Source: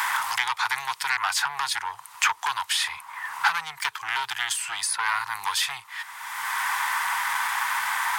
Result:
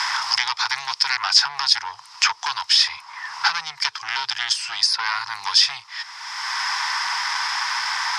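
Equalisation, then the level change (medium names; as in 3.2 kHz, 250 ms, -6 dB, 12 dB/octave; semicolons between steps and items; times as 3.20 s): resonant low-pass 5.2 kHz, resonance Q 9.6; 0.0 dB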